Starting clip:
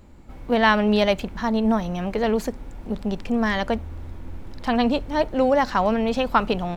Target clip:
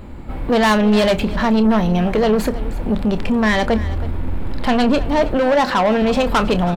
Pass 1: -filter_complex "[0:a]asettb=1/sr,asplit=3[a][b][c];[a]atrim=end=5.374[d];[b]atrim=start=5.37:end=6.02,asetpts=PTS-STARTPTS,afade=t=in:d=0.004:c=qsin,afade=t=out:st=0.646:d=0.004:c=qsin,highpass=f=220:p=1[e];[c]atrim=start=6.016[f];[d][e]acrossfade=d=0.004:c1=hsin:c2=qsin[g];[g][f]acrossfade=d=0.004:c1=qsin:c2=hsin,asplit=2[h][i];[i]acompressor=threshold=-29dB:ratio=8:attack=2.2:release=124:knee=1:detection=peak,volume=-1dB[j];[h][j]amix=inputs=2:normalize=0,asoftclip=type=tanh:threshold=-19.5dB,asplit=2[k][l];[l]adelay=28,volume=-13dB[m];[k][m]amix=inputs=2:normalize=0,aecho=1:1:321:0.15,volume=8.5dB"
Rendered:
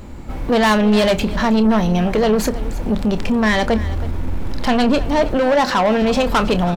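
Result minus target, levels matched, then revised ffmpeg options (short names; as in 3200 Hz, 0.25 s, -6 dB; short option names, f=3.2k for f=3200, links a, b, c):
8000 Hz band +3.5 dB
-filter_complex "[0:a]asettb=1/sr,asplit=3[a][b][c];[a]atrim=end=5.374[d];[b]atrim=start=5.37:end=6.02,asetpts=PTS-STARTPTS,afade=t=in:d=0.004:c=qsin,afade=t=out:st=0.646:d=0.004:c=qsin,highpass=f=220:p=1[e];[c]atrim=start=6.016[f];[d][e]acrossfade=d=0.004:c1=hsin:c2=qsin[g];[g][f]acrossfade=d=0.004:c1=qsin:c2=hsin,asplit=2[h][i];[i]acompressor=threshold=-29dB:ratio=8:attack=2.2:release=124:knee=1:detection=peak,lowpass=f=6.3k:w=0.5412,lowpass=f=6.3k:w=1.3066,volume=-1dB[j];[h][j]amix=inputs=2:normalize=0,asoftclip=type=tanh:threshold=-19.5dB,asplit=2[k][l];[l]adelay=28,volume=-13dB[m];[k][m]amix=inputs=2:normalize=0,aecho=1:1:321:0.15,volume=8.5dB"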